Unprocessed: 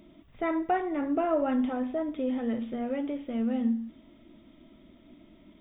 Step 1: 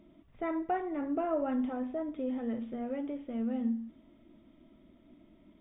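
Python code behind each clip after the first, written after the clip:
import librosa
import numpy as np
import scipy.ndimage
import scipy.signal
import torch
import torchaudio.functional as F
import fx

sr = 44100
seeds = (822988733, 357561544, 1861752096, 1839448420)

y = fx.high_shelf(x, sr, hz=3100.0, db=-10.0)
y = F.gain(torch.from_numpy(y), -4.5).numpy()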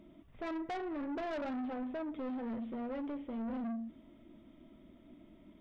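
y = 10.0 ** (-37.5 / 20.0) * np.tanh(x / 10.0 ** (-37.5 / 20.0))
y = F.gain(torch.from_numpy(y), 1.5).numpy()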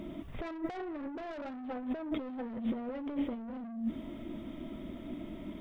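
y = fx.over_compress(x, sr, threshold_db=-44.0, ratio=-0.5)
y = F.gain(torch.from_numpy(y), 8.5).numpy()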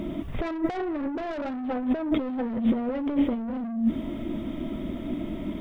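y = fx.low_shelf(x, sr, hz=450.0, db=3.0)
y = F.gain(torch.from_numpy(y), 8.5).numpy()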